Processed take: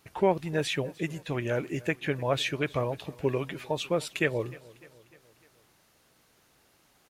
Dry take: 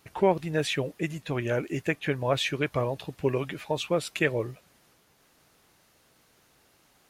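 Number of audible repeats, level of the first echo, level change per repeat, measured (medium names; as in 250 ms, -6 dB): 3, -22.0 dB, -5.5 dB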